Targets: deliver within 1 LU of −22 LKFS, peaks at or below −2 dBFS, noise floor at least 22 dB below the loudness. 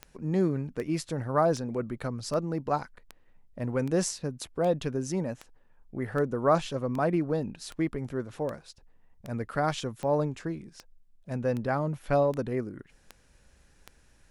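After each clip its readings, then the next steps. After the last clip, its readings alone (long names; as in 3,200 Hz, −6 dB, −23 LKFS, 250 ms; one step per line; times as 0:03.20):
number of clicks 19; integrated loudness −30.0 LKFS; sample peak −12.0 dBFS; target loudness −22.0 LKFS
→ click removal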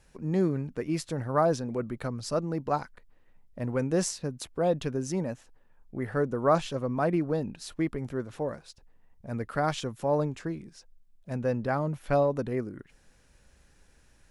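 number of clicks 0; integrated loudness −30.0 LKFS; sample peak −12.0 dBFS; target loudness −22.0 LKFS
→ level +8 dB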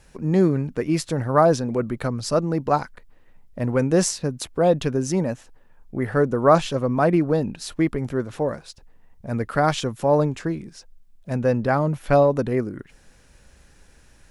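integrated loudness −22.0 LKFS; sample peak −4.0 dBFS; background noise floor −54 dBFS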